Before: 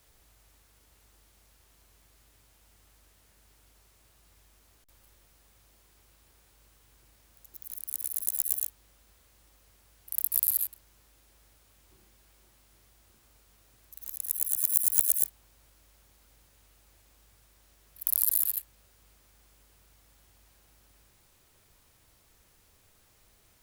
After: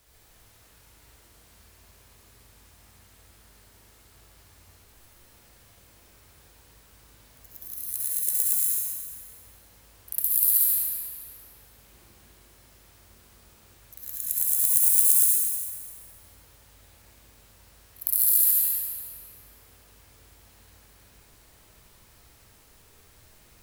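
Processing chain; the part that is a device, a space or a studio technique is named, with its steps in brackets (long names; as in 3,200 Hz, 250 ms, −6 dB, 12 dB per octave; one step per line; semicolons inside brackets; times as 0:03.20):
tunnel (flutter between parallel walls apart 11.9 metres, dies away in 0.46 s; convolution reverb RT60 2.6 s, pre-delay 59 ms, DRR −5.5 dB)
level +1 dB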